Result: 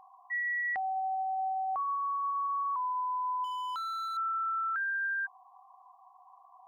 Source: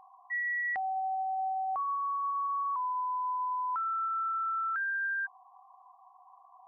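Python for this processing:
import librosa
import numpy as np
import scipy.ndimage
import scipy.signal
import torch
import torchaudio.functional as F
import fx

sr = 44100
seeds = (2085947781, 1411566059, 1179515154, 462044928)

y = fx.clip_hard(x, sr, threshold_db=-34.5, at=(3.44, 4.17))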